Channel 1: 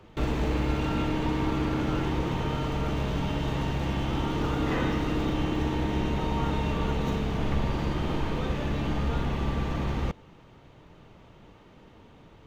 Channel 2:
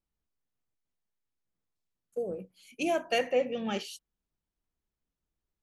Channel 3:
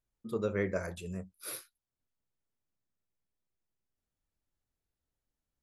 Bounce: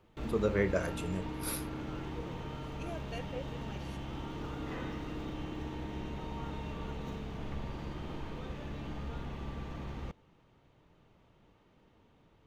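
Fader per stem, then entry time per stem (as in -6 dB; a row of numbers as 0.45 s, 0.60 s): -12.5 dB, -16.0 dB, +2.5 dB; 0.00 s, 0.00 s, 0.00 s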